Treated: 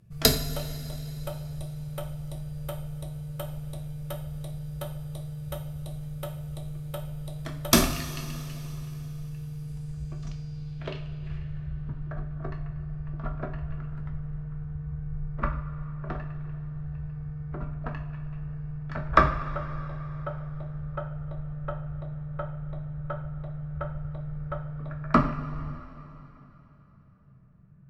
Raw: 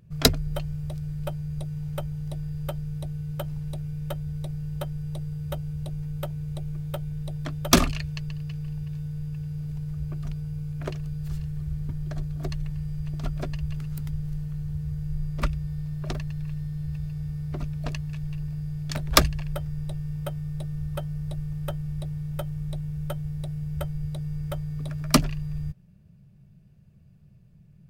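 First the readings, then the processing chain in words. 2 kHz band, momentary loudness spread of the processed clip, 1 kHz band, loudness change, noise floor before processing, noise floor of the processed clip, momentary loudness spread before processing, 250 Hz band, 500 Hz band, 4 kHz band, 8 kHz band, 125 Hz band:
-0.5 dB, 13 LU, +3.5 dB, -2.5 dB, -54 dBFS, -52 dBFS, 10 LU, -2.5 dB, -0.5 dB, -3.0 dB, -2.0 dB, -4.0 dB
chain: low-pass sweep 12000 Hz -> 1400 Hz, 9.56–11.86; two-slope reverb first 0.44 s, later 3.5 s, from -16 dB, DRR 1.5 dB; gain -4 dB

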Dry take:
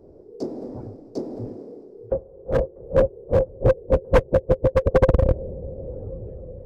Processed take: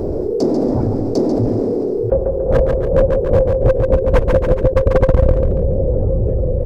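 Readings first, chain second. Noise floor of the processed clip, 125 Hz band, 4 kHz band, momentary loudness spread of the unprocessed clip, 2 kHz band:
-20 dBFS, +9.0 dB, n/a, 17 LU, +3.5 dB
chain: low shelf 65 Hz +7.5 dB; feedback echo 0.141 s, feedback 27%, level -12.5 dB; fast leveller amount 70%

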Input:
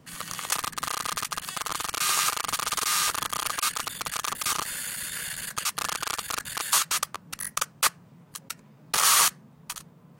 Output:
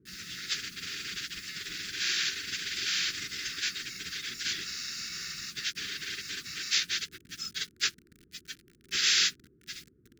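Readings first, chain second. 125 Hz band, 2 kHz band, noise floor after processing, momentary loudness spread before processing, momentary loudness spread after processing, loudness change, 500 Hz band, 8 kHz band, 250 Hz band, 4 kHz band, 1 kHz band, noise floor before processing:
-6.5 dB, -2.5 dB, -64 dBFS, 15 LU, 16 LU, -5.0 dB, -12.5 dB, -9.0 dB, -4.5 dB, -0.5 dB, -21.0 dB, -54 dBFS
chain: inharmonic rescaling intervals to 82%; requantised 8-bit, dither none; band noise 48–660 Hz -59 dBFS; elliptic band-stop 380–1500 Hz, stop band 50 dB; gain -2 dB

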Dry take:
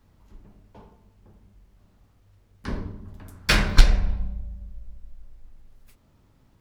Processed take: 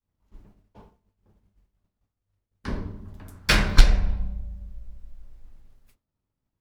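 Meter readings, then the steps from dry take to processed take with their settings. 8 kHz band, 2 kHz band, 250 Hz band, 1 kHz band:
0.0 dB, 0.0 dB, 0.0 dB, 0.0 dB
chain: expander -44 dBFS

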